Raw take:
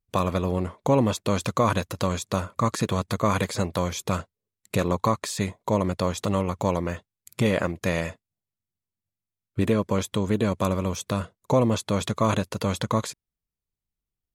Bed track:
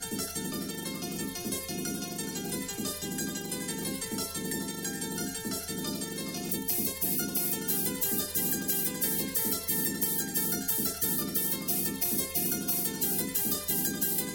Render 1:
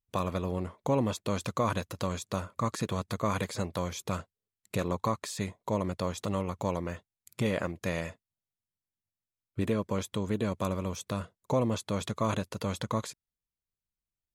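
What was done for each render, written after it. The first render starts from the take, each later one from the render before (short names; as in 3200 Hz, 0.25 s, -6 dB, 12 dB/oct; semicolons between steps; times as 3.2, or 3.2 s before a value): gain -7 dB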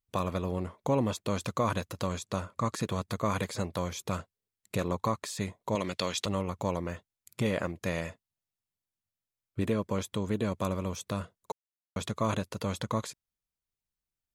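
2.18–2.73 LPF 11000 Hz; 5.75–6.26 weighting filter D; 11.52–11.96 mute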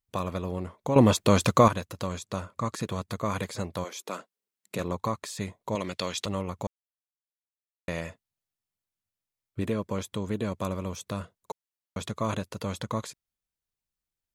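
0.96–1.68 gain +10.5 dB; 3.83–4.78 HPF 320 Hz -> 140 Hz 24 dB/oct; 6.67–7.88 mute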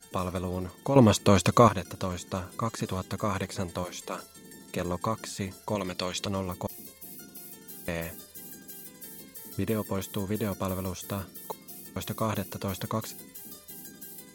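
add bed track -15 dB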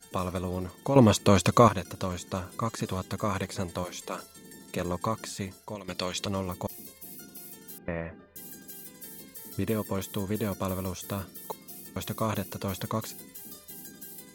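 5.32–5.88 fade out, to -14.5 dB; 7.78–8.36 LPF 2100 Hz 24 dB/oct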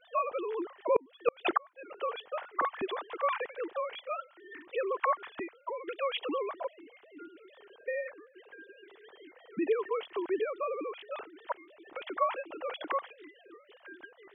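sine-wave speech; flipped gate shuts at -13 dBFS, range -40 dB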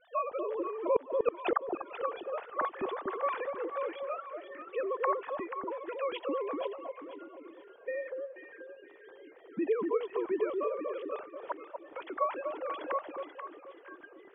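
air absorption 420 m; echo with dull and thin repeats by turns 0.242 s, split 860 Hz, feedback 55%, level -2.5 dB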